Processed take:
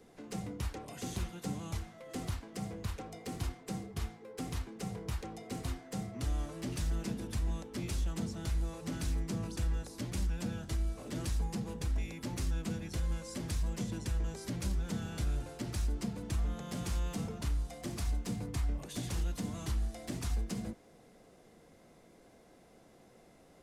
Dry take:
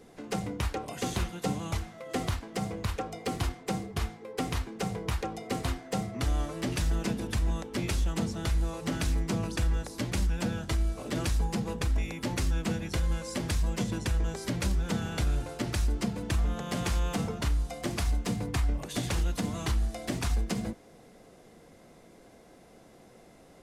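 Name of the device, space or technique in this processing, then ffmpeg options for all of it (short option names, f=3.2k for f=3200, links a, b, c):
one-band saturation: -filter_complex "[0:a]acrossover=split=350|4400[a][b][c];[b]asoftclip=type=tanh:threshold=-39.5dB[d];[a][d][c]amix=inputs=3:normalize=0,volume=-5.5dB"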